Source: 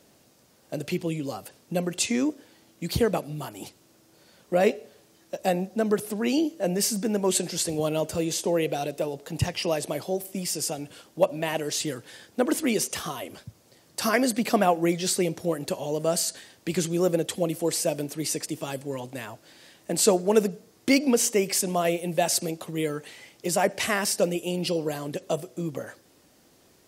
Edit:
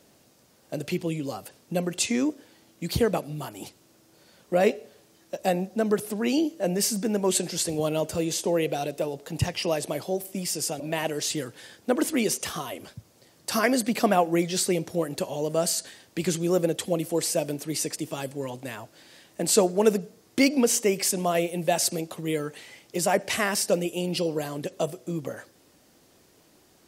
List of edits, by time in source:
10.80–11.30 s: delete

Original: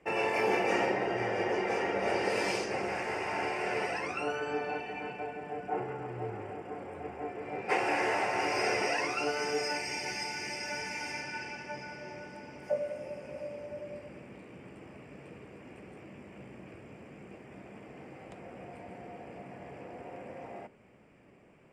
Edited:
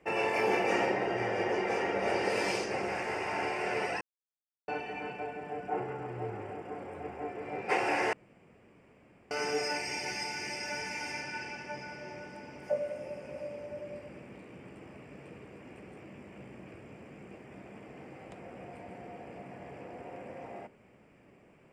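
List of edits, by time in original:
4.01–4.68 s: mute
8.13–9.31 s: room tone

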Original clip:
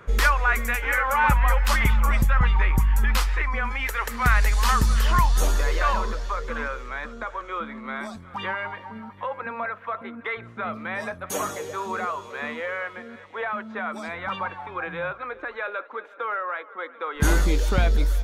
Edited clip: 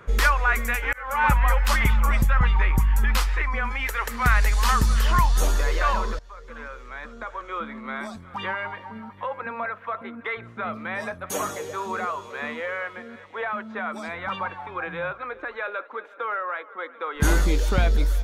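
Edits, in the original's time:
0.93–1.26 s: fade in
6.19–7.65 s: fade in, from -20 dB

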